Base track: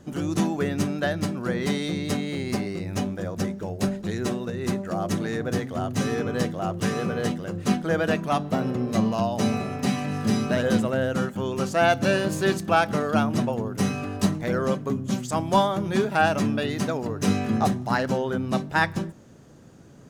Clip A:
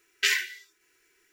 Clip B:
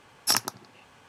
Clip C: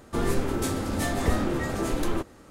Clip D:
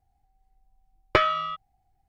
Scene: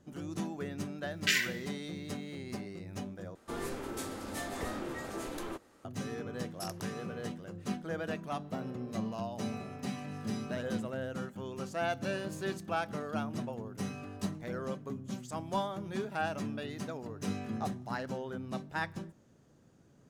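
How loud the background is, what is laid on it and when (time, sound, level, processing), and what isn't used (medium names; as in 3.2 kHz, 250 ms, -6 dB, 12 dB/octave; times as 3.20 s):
base track -13.5 dB
1.04 s: add A -4.5 dB
3.35 s: replace with C -9 dB + bass shelf 170 Hz -12 dB
6.33 s: add B -13 dB + compression, threshold -26 dBFS
not used: D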